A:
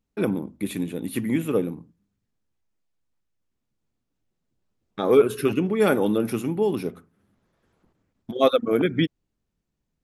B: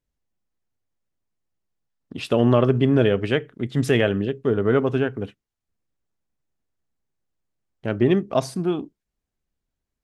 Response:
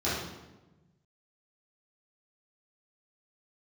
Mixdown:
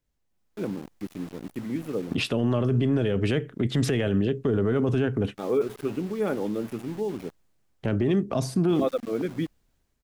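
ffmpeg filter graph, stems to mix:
-filter_complex "[0:a]highshelf=f=2k:g=-11.5,aeval=exprs='val(0)*gte(abs(val(0)),0.02)':c=same,adelay=400,volume=-6.5dB[a];[1:a]dynaudnorm=f=250:g=5:m=11dB,acrossover=split=340|5200[b][c][d];[b]acompressor=threshold=-21dB:ratio=4[e];[c]acompressor=threshold=-28dB:ratio=4[f];[d]acompressor=threshold=-43dB:ratio=4[g];[e][f][g]amix=inputs=3:normalize=0,volume=3dB[h];[a][h]amix=inputs=2:normalize=0,alimiter=limit=-15.5dB:level=0:latency=1:release=10"

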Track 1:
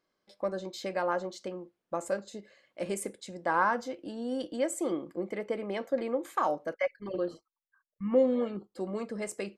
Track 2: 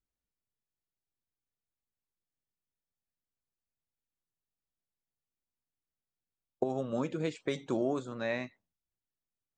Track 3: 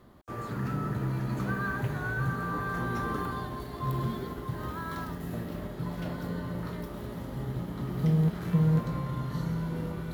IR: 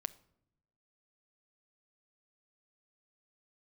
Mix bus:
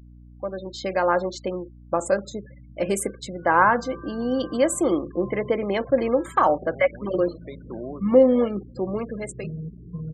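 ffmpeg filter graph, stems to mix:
-filter_complex "[0:a]dynaudnorm=f=170:g=9:m=10.5dB,volume=-0.5dB,asplit=2[a][b];[1:a]volume=-3.5dB[c];[2:a]adelay=1400,volume=-9.5dB,afade=t=in:st=3.13:d=0.67:silence=0.266073[d];[b]apad=whole_len=422077[e];[c][e]sidechaincompress=threshold=-22dB:ratio=16:attack=20:release=724[f];[a][f][d]amix=inputs=3:normalize=0,afftfilt=real='re*gte(hypot(re,im),0.0141)':imag='im*gte(hypot(re,im),0.0141)':win_size=1024:overlap=0.75,aeval=exprs='val(0)+0.00562*(sin(2*PI*60*n/s)+sin(2*PI*2*60*n/s)/2+sin(2*PI*3*60*n/s)/3+sin(2*PI*4*60*n/s)/4+sin(2*PI*5*60*n/s)/5)':c=same"

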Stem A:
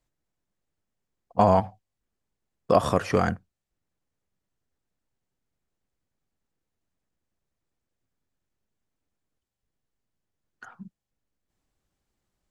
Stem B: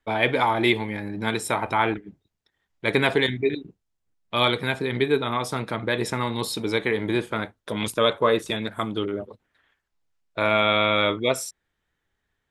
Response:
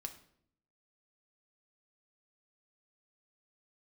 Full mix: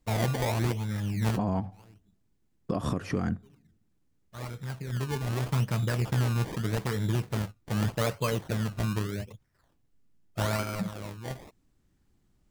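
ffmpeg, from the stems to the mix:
-filter_complex "[0:a]lowshelf=f=410:t=q:w=1.5:g=8,volume=2dB,asplit=3[a][b][c];[b]volume=-21.5dB[d];[1:a]lowshelf=f=210:t=q:w=1.5:g=12.5,acrusher=samples=23:mix=1:aa=0.000001:lfo=1:lforange=23:lforate=0.82,volume=-6.5dB[e];[c]apad=whole_len=551647[f];[e][f]sidechaincompress=threshold=-46dB:ratio=4:attack=22:release=989[g];[2:a]atrim=start_sample=2205[h];[d][h]afir=irnorm=-1:irlink=0[i];[a][g][i]amix=inputs=3:normalize=0,alimiter=limit=-18dB:level=0:latency=1:release=375"

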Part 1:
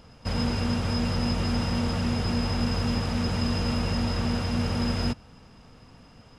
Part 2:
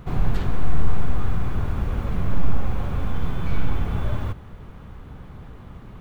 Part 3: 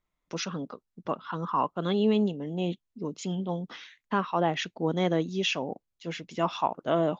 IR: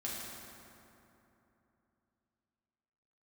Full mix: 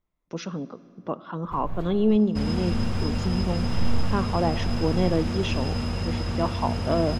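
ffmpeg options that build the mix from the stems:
-filter_complex "[0:a]equalizer=f=66:w=1.1:g=4.5,adelay=2100,volume=-3dB[a];[1:a]adelay=1450,volume=-7dB,asplit=3[b][c][d];[b]atrim=end=2.16,asetpts=PTS-STARTPTS,afade=t=out:st=2.156:d=0.004:c=hsin[e];[c]atrim=start=2.16:end=2.71,asetpts=PTS-STARTPTS,volume=0[f];[d]atrim=start=2.71,asetpts=PTS-STARTPTS,afade=t=in:d=0.004:c=hsin[g];[e][f][g]concat=n=3:v=0:a=1[h];[2:a]tiltshelf=f=970:g=5,volume=-2dB,asplit=3[i][j][k];[j]volume=-16.5dB[l];[k]apad=whole_len=328798[m];[h][m]sidechaincompress=threshold=-31dB:ratio=5:attack=24:release=390[n];[3:a]atrim=start_sample=2205[o];[l][o]afir=irnorm=-1:irlink=0[p];[a][n][i][p]amix=inputs=4:normalize=0"

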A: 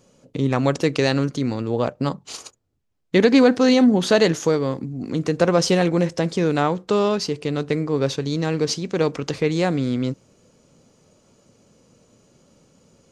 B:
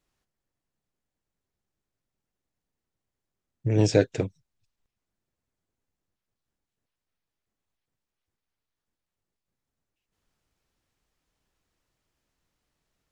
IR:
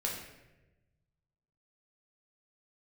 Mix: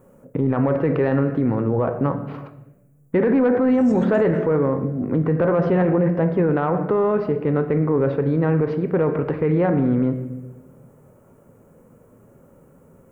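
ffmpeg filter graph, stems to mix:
-filter_complex "[0:a]lowpass=f=1.7k:w=0.5412,lowpass=f=1.7k:w=1.3066,volume=-2.5dB,asplit=3[a][b][c];[b]volume=-8dB[d];[1:a]acrossover=split=4300[e][f];[f]acompressor=threshold=-48dB:ratio=4:attack=1:release=60[g];[e][g]amix=inputs=2:normalize=0,aexciter=amount=13.8:drive=3.3:freq=6.7k,volume=-10.5dB,asplit=2[h][i];[i]volume=-19dB[j];[c]apad=whole_len=578411[k];[h][k]sidechaincompress=threshold=-27dB:ratio=8:attack=47:release=184[l];[2:a]atrim=start_sample=2205[m];[d][j]amix=inputs=2:normalize=0[n];[n][m]afir=irnorm=-1:irlink=0[o];[a][l][o]amix=inputs=3:normalize=0,acontrast=27,alimiter=limit=-11.5dB:level=0:latency=1:release=18"

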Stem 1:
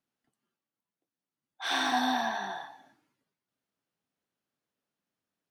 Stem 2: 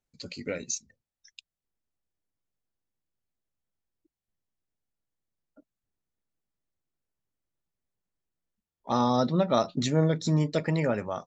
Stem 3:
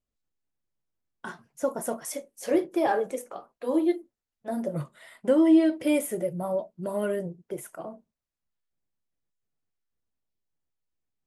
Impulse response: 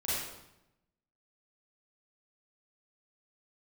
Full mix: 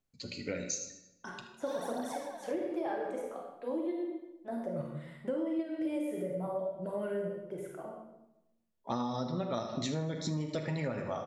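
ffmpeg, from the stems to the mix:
-filter_complex "[0:a]equalizer=f=2.5k:t=o:w=1.8:g=-15,aphaser=in_gain=1:out_gain=1:delay=4.1:decay=0.72:speed=1:type=triangular,volume=-12dB[a];[1:a]flanger=delay=7.4:depth=4:regen=56:speed=0.65:shape=sinusoidal,volume=0.5dB,asplit=4[b][c][d][e];[c]volume=-11.5dB[f];[d]volume=-12.5dB[g];[2:a]aemphasis=mode=reproduction:type=50kf,volume=1.5dB,asplit=2[h][i];[i]volume=-14.5dB[j];[e]apad=whole_len=496842[k];[h][k]sidechaingate=range=-12dB:threshold=-57dB:ratio=16:detection=peak[l];[3:a]atrim=start_sample=2205[m];[f][j]amix=inputs=2:normalize=0[n];[n][m]afir=irnorm=-1:irlink=0[o];[g]aecho=0:1:78|156|234|312|390|468|546:1|0.5|0.25|0.125|0.0625|0.0312|0.0156[p];[a][b][l][o][p]amix=inputs=5:normalize=0,acompressor=threshold=-31dB:ratio=8"

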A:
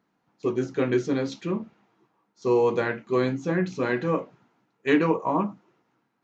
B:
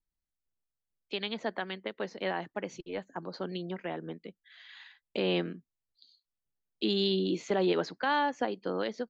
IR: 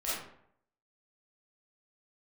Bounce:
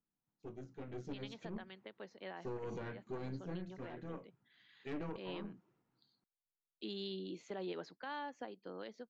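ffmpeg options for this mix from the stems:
-filter_complex "[0:a]equalizer=f=91:t=o:w=2.7:g=12,aeval=exprs='(tanh(6.31*val(0)+0.7)-tanh(0.7))/6.31':c=same,volume=-3.5dB,afade=t=in:st=0.95:d=0.38:silence=0.237137,afade=t=out:st=3.28:d=0.4:silence=0.375837,afade=t=in:st=4.52:d=0.4:silence=0.421697[a];[1:a]volume=-15dB,asplit=2[b][c];[c]apad=whole_len=275149[d];[a][d]sidechaincompress=threshold=-52dB:ratio=8:attack=25:release=213[e];[e][b]amix=inputs=2:normalize=0,alimiter=level_in=9.5dB:limit=-24dB:level=0:latency=1:release=187,volume=-9.5dB"

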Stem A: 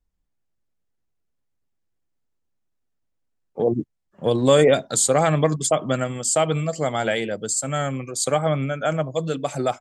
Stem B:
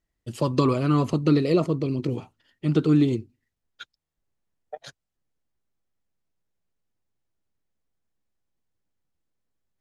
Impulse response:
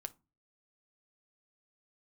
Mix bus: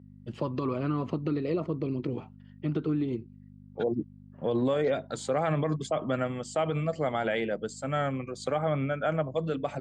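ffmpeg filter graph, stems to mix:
-filter_complex "[0:a]adelay=200,volume=-3.5dB[a];[1:a]acompressor=threshold=-23dB:ratio=6,volume=-2dB,asplit=2[b][c];[c]apad=whole_len=441271[d];[a][d]sidechaincompress=threshold=-38dB:ratio=8:attack=16:release=1040[e];[e][b]amix=inputs=2:normalize=0,aeval=exprs='val(0)+0.00794*(sin(2*PI*50*n/s)+sin(2*PI*2*50*n/s)/2+sin(2*PI*3*50*n/s)/3+sin(2*PI*4*50*n/s)/4+sin(2*PI*5*50*n/s)/5)':c=same,highpass=130,lowpass=2.7k,alimiter=limit=-19dB:level=0:latency=1:release=42"

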